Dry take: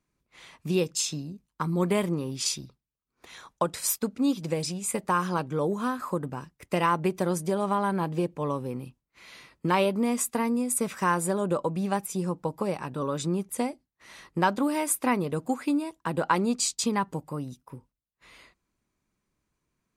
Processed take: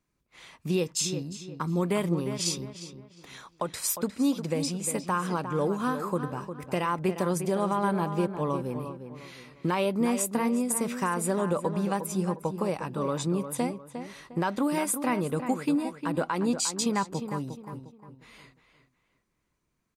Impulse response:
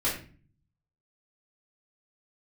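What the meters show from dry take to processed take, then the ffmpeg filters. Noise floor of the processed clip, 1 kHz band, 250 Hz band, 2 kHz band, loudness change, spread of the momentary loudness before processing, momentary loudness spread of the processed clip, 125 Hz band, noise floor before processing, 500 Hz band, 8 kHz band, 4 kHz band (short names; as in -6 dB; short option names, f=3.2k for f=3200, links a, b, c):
-76 dBFS, -2.5 dB, 0.0 dB, -2.5 dB, -1.0 dB, 10 LU, 13 LU, 0.0 dB, -84 dBFS, -0.5 dB, -1.0 dB, -1.0 dB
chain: -filter_complex "[0:a]alimiter=limit=-17dB:level=0:latency=1:release=143,asplit=2[a][b];[b]adelay=355,lowpass=f=3k:p=1,volume=-9dB,asplit=2[c][d];[d]adelay=355,lowpass=f=3k:p=1,volume=0.34,asplit=2[e][f];[f]adelay=355,lowpass=f=3k:p=1,volume=0.34,asplit=2[g][h];[h]adelay=355,lowpass=f=3k:p=1,volume=0.34[i];[a][c][e][g][i]amix=inputs=5:normalize=0"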